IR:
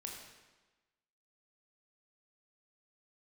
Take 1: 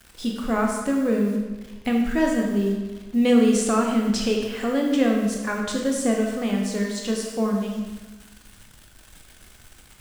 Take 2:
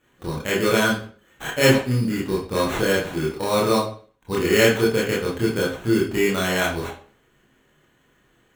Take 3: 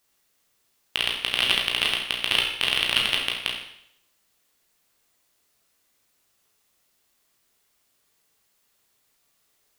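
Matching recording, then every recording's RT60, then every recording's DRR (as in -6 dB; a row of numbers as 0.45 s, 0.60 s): 1; 1.2 s, 0.45 s, 0.70 s; -0.5 dB, -5.5 dB, -1.5 dB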